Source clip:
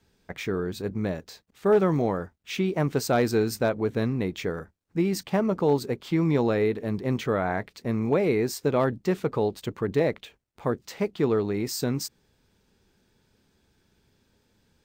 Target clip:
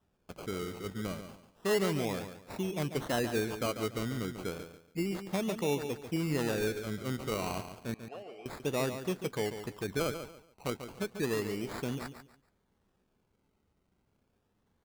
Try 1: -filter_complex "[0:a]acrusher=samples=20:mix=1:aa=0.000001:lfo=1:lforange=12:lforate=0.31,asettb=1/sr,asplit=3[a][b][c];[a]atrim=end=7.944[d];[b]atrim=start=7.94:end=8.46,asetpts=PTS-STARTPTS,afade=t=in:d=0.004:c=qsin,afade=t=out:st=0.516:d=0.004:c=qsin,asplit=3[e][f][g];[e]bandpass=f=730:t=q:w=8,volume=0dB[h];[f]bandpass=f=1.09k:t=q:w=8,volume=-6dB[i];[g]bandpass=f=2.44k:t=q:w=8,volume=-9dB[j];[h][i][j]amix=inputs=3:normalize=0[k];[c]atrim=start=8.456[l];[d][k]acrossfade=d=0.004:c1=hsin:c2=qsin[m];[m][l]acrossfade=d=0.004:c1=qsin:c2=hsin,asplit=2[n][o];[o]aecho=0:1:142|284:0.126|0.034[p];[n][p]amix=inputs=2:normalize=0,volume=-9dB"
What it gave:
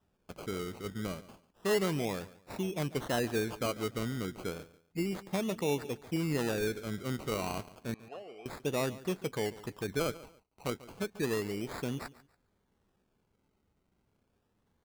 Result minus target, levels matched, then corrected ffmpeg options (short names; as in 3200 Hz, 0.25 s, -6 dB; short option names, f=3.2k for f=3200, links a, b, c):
echo-to-direct -8.5 dB
-filter_complex "[0:a]acrusher=samples=20:mix=1:aa=0.000001:lfo=1:lforange=12:lforate=0.31,asettb=1/sr,asplit=3[a][b][c];[a]atrim=end=7.944[d];[b]atrim=start=7.94:end=8.46,asetpts=PTS-STARTPTS,afade=t=in:d=0.004:c=qsin,afade=t=out:st=0.516:d=0.004:c=qsin,asplit=3[e][f][g];[e]bandpass=f=730:t=q:w=8,volume=0dB[h];[f]bandpass=f=1.09k:t=q:w=8,volume=-6dB[i];[g]bandpass=f=2.44k:t=q:w=8,volume=-9dB[j];[h][i][j]amix=inputs=3:normalize=0[k];[c]atrim=start=8.456[l];[d][k]acrossfade=d=0.004:c1=hsin:c2=qsin[m];[m][l]acrossfade=d=0.004:c1=qsin:c2=hsin,asplit=2[n][o];[o]aecho=0:1:142|284|426:0.335|0.0904|0.0244[p];[n][p]amix=inputs=2:normalize=0,volume=-9dB"